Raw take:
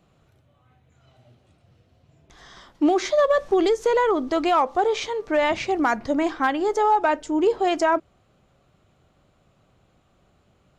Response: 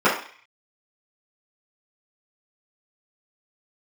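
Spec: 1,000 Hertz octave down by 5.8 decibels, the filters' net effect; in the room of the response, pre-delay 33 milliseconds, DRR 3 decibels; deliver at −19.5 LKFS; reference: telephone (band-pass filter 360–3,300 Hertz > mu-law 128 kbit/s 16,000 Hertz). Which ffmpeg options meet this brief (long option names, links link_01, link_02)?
-filter_complex "[0:a]equalizer=frequency=1000:width_type=o:gain=-7.5,asplit=2[link_01][link_02];[1:a]atrim=start_sample=2205,adelay=33[link_03];[link_02][link_03]afir=irnorm=-1:irlink=0,volume=-25dB[link_04];[link_01][link_04]amix=inputs=2:normalize=0,highpass=360,lowpass=3300,volume=4dB" -ar 16000 -c:a pcm_mulaw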